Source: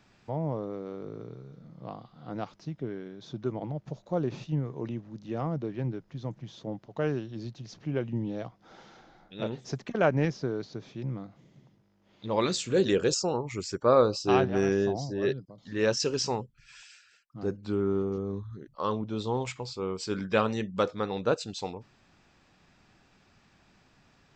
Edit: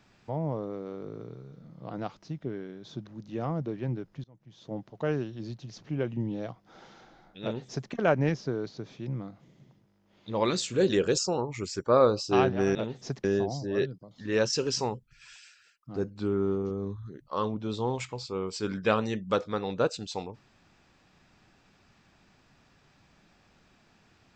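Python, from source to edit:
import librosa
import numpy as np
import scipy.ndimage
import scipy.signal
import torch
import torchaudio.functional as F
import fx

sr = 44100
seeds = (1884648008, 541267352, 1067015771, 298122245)

y = fx.edit(x, sr, fx.cut(start_s=1.9, length_s=0.37),
    fx.cut(start_s=3.44, length_s=1.59),
    fx.fade_in_from(start_s=6.2, length_s=0.51, curve='qua', floor_db=-24.0),
    fx.duplicate(start_s=9.38, length_s=0.49, to_s=14.71), tone=tone)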